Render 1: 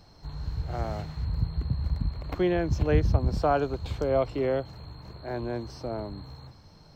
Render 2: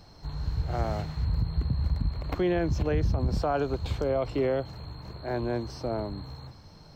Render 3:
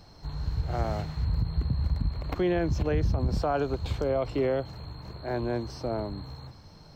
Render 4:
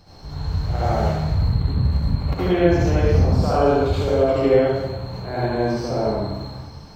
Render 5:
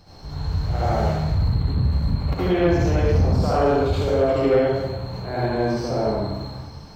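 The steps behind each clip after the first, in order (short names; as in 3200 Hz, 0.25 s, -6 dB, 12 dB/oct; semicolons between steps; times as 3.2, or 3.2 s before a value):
limiter -20.5 dBFS, peak gain reduction 10 dB; gain +2.5 dB
ending taper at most 410 dB/s
reverb RT60 1.1 s, pre-delay 58 ms, DRR -9 dB
soft clip -10 dBFS, distortion -18 dB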